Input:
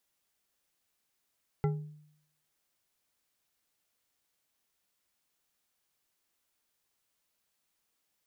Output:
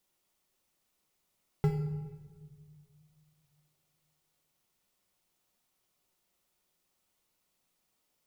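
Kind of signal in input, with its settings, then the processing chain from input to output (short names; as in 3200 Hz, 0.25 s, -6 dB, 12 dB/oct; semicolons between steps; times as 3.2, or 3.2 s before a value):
glass hit bar, lowest mode 151 Hz, decay 0.72 s, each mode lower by 5 dB, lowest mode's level -24 dB
notch 1600 Hz, Q 7; in parallel at -12 dB: sample-and-hold 18×; on the sum: shoebox room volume 1500 m³, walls mixed, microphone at 1 m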